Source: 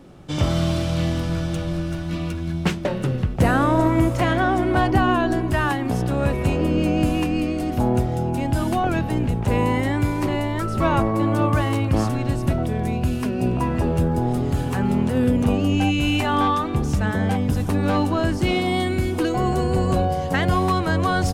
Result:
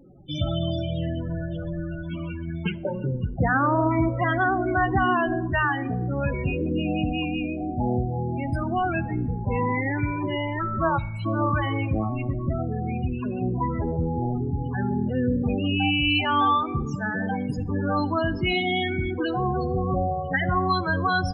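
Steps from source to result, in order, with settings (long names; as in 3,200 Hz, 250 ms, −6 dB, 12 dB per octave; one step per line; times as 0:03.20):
0:10.98–0:11.26: gain on a spectral selection 210–2,100 Hz −28 dB
0:16.85–0:17.58: high-pass filter 120 Hz 24 dB per octave
tilt shelving filter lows −5.5 dB, about 1,100 Hz
spectral peaks only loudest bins 16
convolution reverb RT60 1.0 s, pre-delay 4 ms, DRR 16 dB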